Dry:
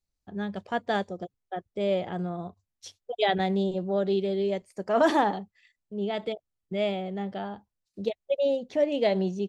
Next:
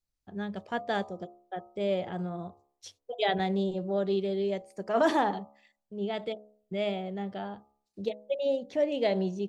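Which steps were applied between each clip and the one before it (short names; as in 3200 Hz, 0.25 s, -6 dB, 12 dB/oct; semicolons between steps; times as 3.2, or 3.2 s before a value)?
de-hum 70.54 Hz, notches 18; gain -2.5 dB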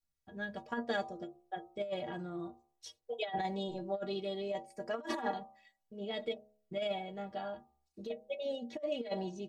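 metallic resonator 70 Hz, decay 0.37 s, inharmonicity 0.03; negative-ratio compressor -38 dBFS, ratio -0.5; gain +4 dB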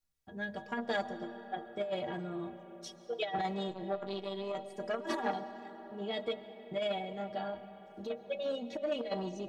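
on a send at -12 dB: reverb RT60 4.7 s, pre-delay 95 ms; on the sum: core saturation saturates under 660 Hz; gain +2.5 dB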